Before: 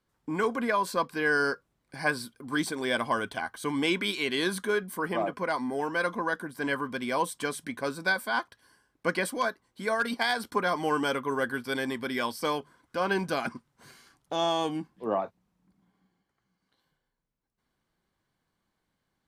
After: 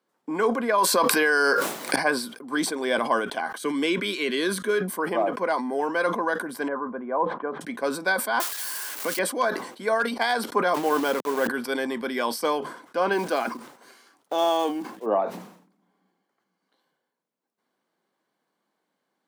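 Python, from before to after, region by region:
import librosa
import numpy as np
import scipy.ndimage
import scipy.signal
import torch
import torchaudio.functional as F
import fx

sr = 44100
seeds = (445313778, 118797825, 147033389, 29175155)

y = fx.chain(x, sr, fx.tilt_eq(slope=2.0),
    fx.env_flatten(amount_pct=100), at=(0.78, 1.96))
y = fx.chain(y, sr, fx.peak_eq(hz=820.0, db=-12.5, octaves=0.46),
    fx.band_squash(depth_pct=40), at=(3.59, 4.81))
y = fx.chain(y, sr, fx.lowpass(hz=1300.0, slope=24),
    fx.low_shelf(hz=430.0, db=-5.0), at=(6.68, 7.61))
y = fx.chain(y, sr, fx.crossing_spikes(level_db=-25.0),
    fx.band_squash(depth_pct=70), at=(8.4, 9.19))
y = fx.chain(y, sr, fx.delta_hold(step_db=-32.5),
    fx.high_shelf(hz=11000.0, db=4.5), at=(10.74, 11.48))
y = fx.chain(y, sr, fx.block_float(bits=5),
    fx.peak_eq(hz=160.0, db=-10.5, octaves=0.47), at=(13.13, 15.06))
y = scipy.signal.sosfilt(scipy.signal.butter(4, 200.0, 'highpass', fs=sr, output='sos'), y)
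y = fx.peak_eq(y, sr, hz=600.0, db=6.0, octaves=2.0)
y = fx.sustainer(y, sr, db_per_s=87.0)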